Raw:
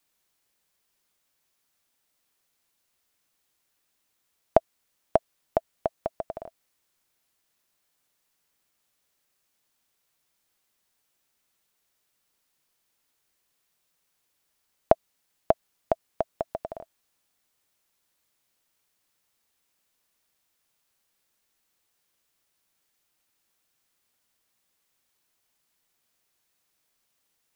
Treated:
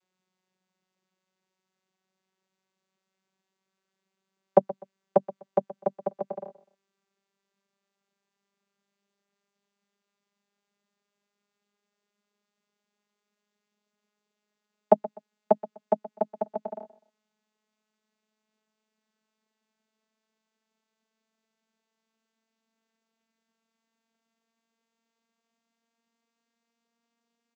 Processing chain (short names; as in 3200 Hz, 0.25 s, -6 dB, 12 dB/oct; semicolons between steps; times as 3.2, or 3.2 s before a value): vocoder on a gliding note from F#3, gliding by +4 st; on a send: feedback echo 0.125 s, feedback 27%, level -17.5 dB; on the sum: gain +2 dB